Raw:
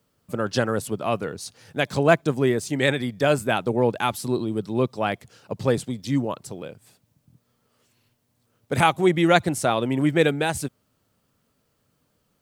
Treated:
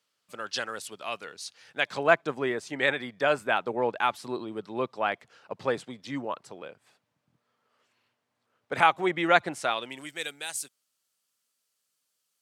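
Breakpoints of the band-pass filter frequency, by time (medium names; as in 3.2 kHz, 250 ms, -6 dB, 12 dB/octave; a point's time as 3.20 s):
band-pass filter, Q 0.69
1.32 s 3.7 kHz
2.16 s 1.4 kHz
9.51 s 1.4 kHz
10.13 s 7.9 kHz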